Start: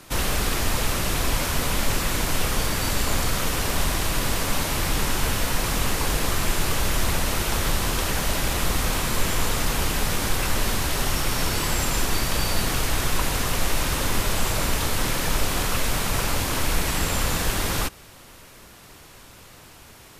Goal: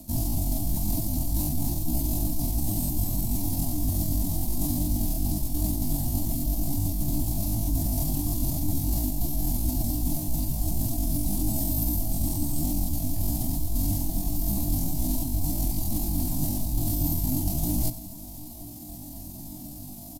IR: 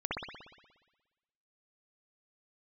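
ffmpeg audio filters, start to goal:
-filter_complex "[0:a]lowshelf=f=330:g=7.5,asplit=2[a][b];[b]adelay=36,volume=-8dB[c];[a][c]amix=inputs=2:normalize=0,areverse,acompressor=threshold=-24dB:ratio=10,areverse,firequalizer=gain_entry='entry(110,0);entry(170,8);entry(240,-30);entry(370,1);entry(770,-28);entry(2400,-5);entry(7700,12);entry(12000,-30)':delay=0.05:min_phase=1,asplit=2[d][e];[e]aecho=0:1:98|196|294:0.158|0.0507|0.0162[f];[d][f]amix=inputs=2:normalize=0,asetrate=78577,aresample=44100,atempo=0.561231,volume=2dB"

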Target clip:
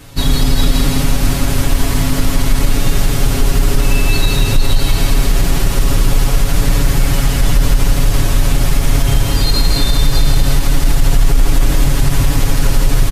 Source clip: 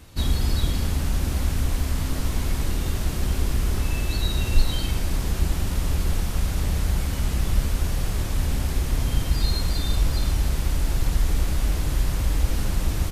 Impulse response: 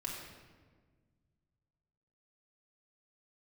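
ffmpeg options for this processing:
-af "aecho=1:1:7.2:0.91,aecho=1:1:166|332|498|664|830|996|1162|1328:0.596|0.334|0.187|0.105|0.0586|0.0328|0.0184|0.0103,alimiter=level_in=10dB:limit=-1dB:release=50:level=0:latency=1,volume=-1dB"

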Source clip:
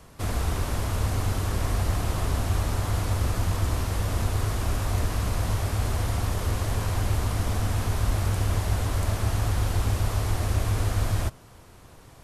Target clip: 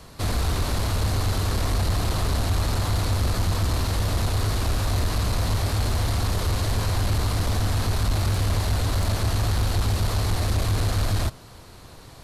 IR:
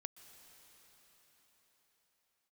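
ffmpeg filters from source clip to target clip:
-af "equalizer=f=4.2k:w=3.3:g=8.5,asoftclip=type=tanh:threshold=-20.5dB,volume=4.5dB"

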